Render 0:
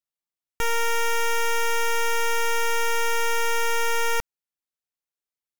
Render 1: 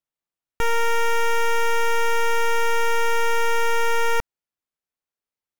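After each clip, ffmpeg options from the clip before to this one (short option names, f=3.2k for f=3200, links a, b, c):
-af "highshelf=f=3k:g=-8.5,volume=4dB"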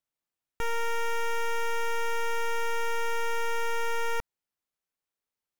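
-af "alimiter=level_in=2dB:limit=-24dB:level=0:latency=1,volume=-2dB"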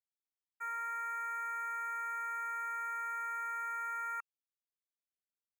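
-af "afftfilt=real='re*(1-between(b*sr/4096,2700,6200))':imag='im*(1-between(b*sr/4096,2700,6200))':win_size=4096:overlap=0.75,agate=range=-33dB:threshold=-22dB:ratio=3:detection=peak,highpass=f=1.3k:t=q:w=5.1,volume=-6dB"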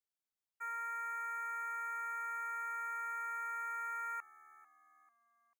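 -filter_complex "[0:a]asplit=4[a][b][c][d];[b]adelay=443,afreqshift=-76,volume=-20.5dB[e];[c]adelay=886,afreqshift=-152,volume=-27.4dB[f];[d]adelay=1329,afreqshift=-228,volume=-34.4dB[g];[a][e][f][g]amix=inputs=4:normalize=0,volume=-2dB"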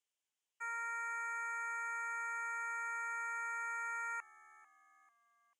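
-af "highpass=420,equalizer=f=690:t=q:w=4:g=-4,equalizer=f=1.3k:t=q:w=4:g=-7,equalizer=f=3k:t=q:w=4:g=7,equalizer=f=4.3k:t=q:w=4:g=-8,equalizer=f=6.8k:t=q:w=4:g=4,lowpass=f=9.4k:w=0.5412,lowpass=f=9.4k:w=1.3066,volume=4dB"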